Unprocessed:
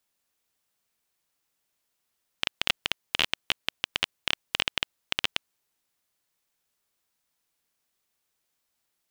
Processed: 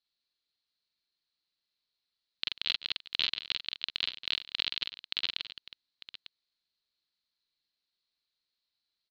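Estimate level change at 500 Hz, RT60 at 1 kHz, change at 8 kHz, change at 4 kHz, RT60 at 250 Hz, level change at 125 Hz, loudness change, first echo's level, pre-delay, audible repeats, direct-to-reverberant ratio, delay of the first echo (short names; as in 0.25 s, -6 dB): -14.0 dB, none, under -15 dB, -2.5 dB, none, under -10 dB, -3.5 dB, -3.0 dB, none, 4, none, 45 ms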